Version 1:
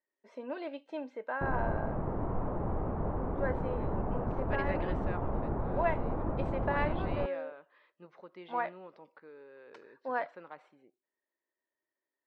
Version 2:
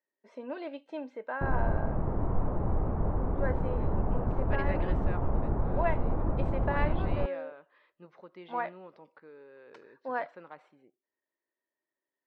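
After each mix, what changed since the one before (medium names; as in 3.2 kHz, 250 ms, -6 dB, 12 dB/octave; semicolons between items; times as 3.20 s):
master: add bass shelf 120 Hz +8 dB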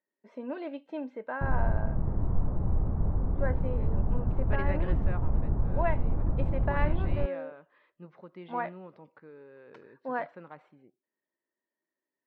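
background -7.5 dB; master: add tone controls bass +10 dB, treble -7 dB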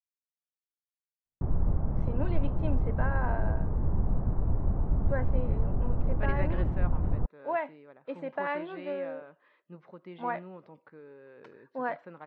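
speech: entry +1.70 s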